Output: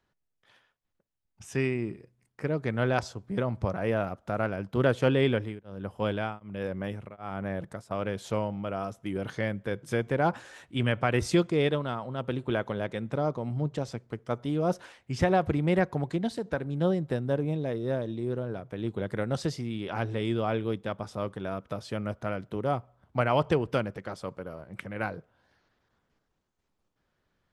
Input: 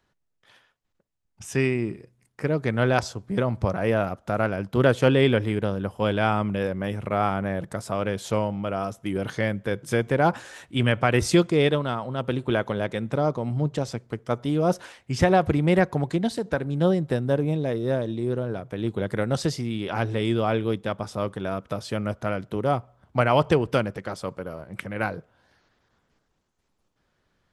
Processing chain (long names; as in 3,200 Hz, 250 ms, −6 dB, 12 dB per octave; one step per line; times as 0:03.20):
high-shelf EQ 5,800 Hz −5 dB
0:05.25–0:07.91: tremolo along a rectified sine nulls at 1.3 Hz
level −5 dB